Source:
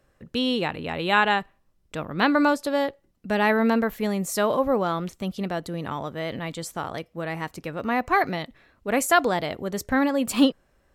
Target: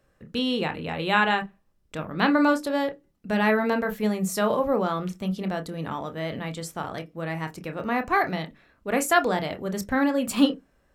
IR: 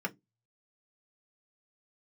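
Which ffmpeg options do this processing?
-filter_complex "[0:a]asplit=2[s0][s1];[1:a]atrim=start_sample=2205,adelay=26[s2];[s1][s2]afir=irnorm=-1:irlink=0,volume=0.266[s3];[s0][s3]amix=inputs=2:normalize=0,volume=0.794"

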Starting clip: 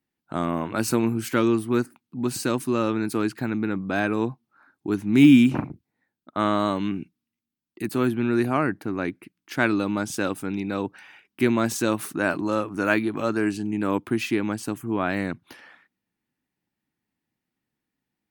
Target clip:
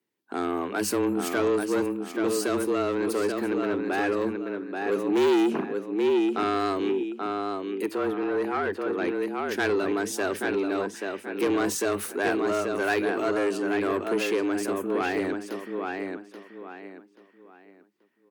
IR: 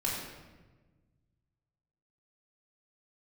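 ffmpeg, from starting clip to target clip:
-filter_complex "[0:a]asplit=2[s0][s1];[s1]adelay=832,lowpass=f=4400:p=1,volume=0.501,asplit=2[s2][s3];[s3]adelay=832,lowpass=f=4400:p=1,volume=0.29,asplit=2[s4][s5];[s5]adelay=832,lowpass=f=4400:p=1,volume=0.29,asplit=2[s6][s7];[s7]adelay=832,lowpass=f=4400:p=1,volume=0.29[s8];[s0][s2][s4][s6][s8]amix=inputs=5:normalize=0,asoftclip=type=tanh:threshold=0.106,asettb=1/sr,asplit=3[s9][s10][s11];[s9]atrim=end=7.864[s12];[s10]atrim=start=7.86:end=8.98,asetpts=PTS-STARTPTS,afade=t=in:d=0.004:c=qsin,afade=t=out:st=1.116:d=0.004:c=qsin,asplit=2[s13][s14];[s14]highpass=f=720:p=1,volume=3.55,asoftclip=type=tanh:threshold=0.106[s15];[s13][s15]amix=inputs=2:normalize=0,lowpass=f=1400:p=1,volume=0.501[s16];[s11]atrim=start=8.976[s17];[s12][s16]acrossfade=d=0.004:c1=hsin:c2=qsin[s18];[s18][s17]acrossfade=d=0.004:c1=qsin:c2=hsin,afreqshift=93,asplit=2[s19][s20];[1:a]atrim=start_sample=2205,atrim=end_sample=3528[s21];[s20][s21]afir=irnorm=-1:irlink=0,volume=0.0668[s22];[s19][s22]amix=inputs=2:normalize=0"

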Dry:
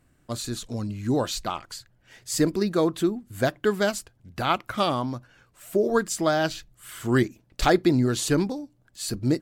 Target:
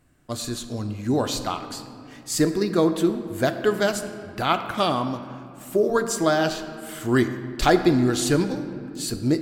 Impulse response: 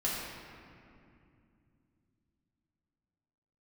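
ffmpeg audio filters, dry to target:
-filter_complex "[0:a]asplit=2[s0][s1];[1:a]atrim=start_sample=2205,lowshelf=f=95:g=-11[s2];[s1][s2]afir=irnorm=-1:irlink=0,volume=0.251[s3];[s0][s3]amix=inputs=2:normalize=0"

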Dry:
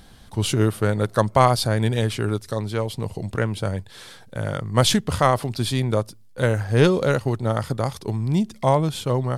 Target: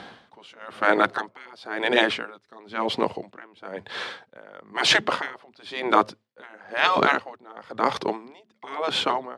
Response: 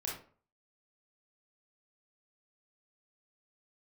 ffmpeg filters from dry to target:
-filter_complex "[0:a]afftfilt=real='re*lt(hypot(re,im),0.282)':imag='im*lt(hypot(re,im),0.282)':win_size=1024:overlap=0.75,acrossover=split=410[s0][s1];[s0]aeval=exprs='val(0)*gte(abs(val(0)),0.001)':c=same[s2];[s1]acontrast=67[s3];[s2][s3]amix=inputs=2:normalize=0,highpass=210,lowpass=2700,aeval=exprs='val(0)*pow(10,-29*(0.5-0.5*cos(2*PI*1*n/s))/20)':c=same,volume=2.66"

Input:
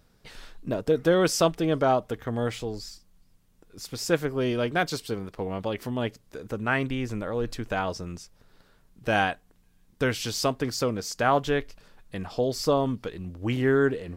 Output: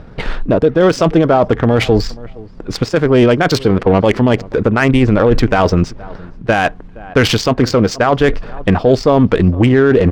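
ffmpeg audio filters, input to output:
-filter_complex "[0:a]areverse,acompressor=threshold=0.0282:ratio=8,areverse,asplit=2[s0][s1];[s1]adelay=659,lowpass=f=3100:p=1,volume=0.0668,asplit=2[s2][s3];[s3]adelay=659,lowpass=f=3100:p=1,volume=0.17[s4];[s0][s2][s4]amix=inputs=3:normalize=0,atempo=1.4,adynamicsmooth=sensitivity=6:basefreq=1900,alimiter=level_in=26.6:limit=0.891:release=50:level=0:latency=1,volume=0.891"

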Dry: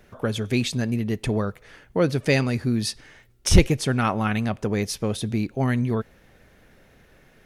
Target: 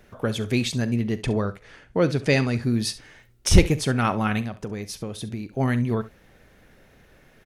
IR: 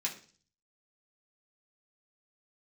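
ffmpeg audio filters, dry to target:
-filter_complex "[0:a]asettb=1/sr,asplit=3[s0][s1][s2];[s0]atrim=end=0.894[s3];[s1]atrim=start=0.89:end=2.62,asetpts=PTS-STARTPTS,afade=t=in:d=0.004:c=qsin,afade=t=out:st=1.726:d=0.004:c=qsin,lowpass=8900[s4];[s2]atrim=start=2.616[s5];[s3][s4]acrossfade=d=0.004:c1=hsin:c2=qsin[s6];[s6][s5]acrossfade=d=0.004:c1=qsin:c2=hsin,asettb=1/sr,asplit=3[s7][s8][s9];[s7]atrim=end=4.414[s10];[s8]atrim=start=4.41:end=5.53,asetpts=PTS-STARTPTS,afade=t=in:d=0.004:c=qsin,afade=t=out:st=1.116:d=0.004:c=qsin,acompressor=threshold=0.0355:ratio=6[s11];[s9]atrim=start=5.526[s12];[s10][s11]acrossfade=d=0.004:c1=hsin:c2=qsin[s13];[s13][s12]acrossfade=d=0.004:c1=qsin:c2=hsin,aecho=1:1:42|68:0.126|0.15"

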